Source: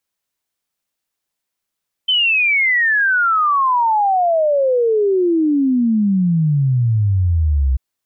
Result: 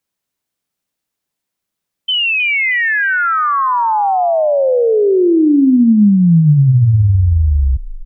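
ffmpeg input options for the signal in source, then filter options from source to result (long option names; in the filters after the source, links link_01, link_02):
-f lavfi -i "aevalsrc='0.251*clip(min(t,5.69-t)/0.01,0,1)*sin(2*PI*3100*5.69/log(63/3100)*(exp(log(63/3100)*t/5.69)-1))':duration=5.69:sample_rate=44100"
-filter_complex "[0:a]equalizer=frequency=180:width_type=o:width=2.6:gain=6.5,asplit=4[link_01][link_02][link_03][link_04];[link_02]adelay=315,afreqshift=-45,volume=-13.5dB[link_05];[link_03]adelay=630,afreqshift=-90,volume=-22.9dB[link_06];[link_04]adelay=945,afreqshift=-135,volume=-32.2dB[link_07];[link_01][link_05][link_06][link_07]amix=inputs=4:normalize=0"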